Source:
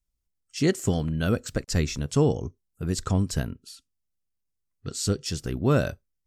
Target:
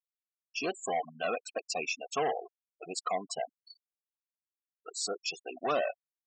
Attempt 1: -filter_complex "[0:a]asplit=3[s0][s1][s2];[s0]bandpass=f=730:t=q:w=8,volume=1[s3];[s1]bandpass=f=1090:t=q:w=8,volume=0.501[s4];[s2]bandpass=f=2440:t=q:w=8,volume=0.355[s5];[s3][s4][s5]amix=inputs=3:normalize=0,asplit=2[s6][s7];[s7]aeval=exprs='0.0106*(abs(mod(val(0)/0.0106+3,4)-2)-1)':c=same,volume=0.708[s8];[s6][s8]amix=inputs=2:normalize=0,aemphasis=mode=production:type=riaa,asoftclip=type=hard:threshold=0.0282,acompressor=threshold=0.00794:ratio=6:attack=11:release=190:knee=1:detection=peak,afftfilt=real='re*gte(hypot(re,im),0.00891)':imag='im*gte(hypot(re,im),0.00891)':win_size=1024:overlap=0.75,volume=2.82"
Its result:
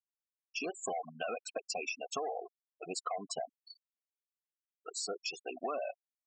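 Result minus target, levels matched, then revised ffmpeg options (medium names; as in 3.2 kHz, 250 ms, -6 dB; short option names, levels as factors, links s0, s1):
compression: peak gain reduction +8 dB
-filter_complex "[0:a]asplit=3[s0][s1][s2];[s0]bandpass=f=730:t=q:w=8,volume=1[s3];[s1]bandpass=f=1090:t=q:w=8,volume=0.501[s4];[s2]bandpass=f=2440:t=q:w=8,volume=0.355[s5];[s3][s4][s5]amix=inputs=3:normalize=0,asplit=2[s6][s7];[s7]aeval=exprs='0.0106*(abs(mod(val(0)/0.0106+3,4)-2)-1)':c=same,volume=0.708[s8];[s6][s8]amix=inputs=2:normalize=0,aemphasis=mode=production:type=riaa,asoftclip=type=hard:threshold=0.0282,afftfilt=real='re*gte(hypot(re,im),0.00891)':imag='im*gte(hypot(re,im),0.00891)':win_size=1024:overlap=0.75,volume=2.82"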